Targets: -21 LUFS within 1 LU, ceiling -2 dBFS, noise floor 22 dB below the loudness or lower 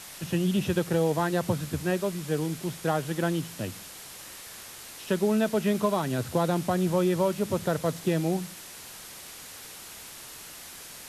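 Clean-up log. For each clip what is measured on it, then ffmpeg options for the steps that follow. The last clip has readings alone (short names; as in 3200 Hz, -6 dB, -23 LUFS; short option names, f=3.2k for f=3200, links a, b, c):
noise floor -44 dBFS; noise floor target -50 dBFS; loudness -27.5 LUFS; peak -12.5 dBFS; loudness target -21.0 LUFS
-> -af "afftdn=nr=6:nf=-44"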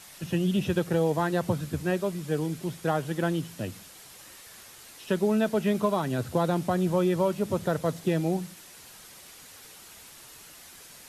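noise floor -49 dBFS; noise floor target -50 dBFS
-> -af "afftdn=nr=6:nf=-49"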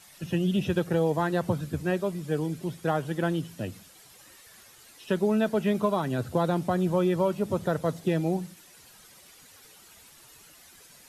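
noise floor -54 dBFS; loudness -28.0 LUFS; peak -12.5 dBFS; loudness target -21.0 LUFS
-> -af "volume=7dB"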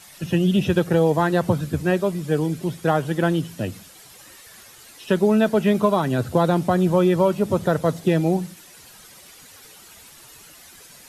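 loudness -21.0 LUFS; peak -5.5 dBFS; noise floor -47 dBFS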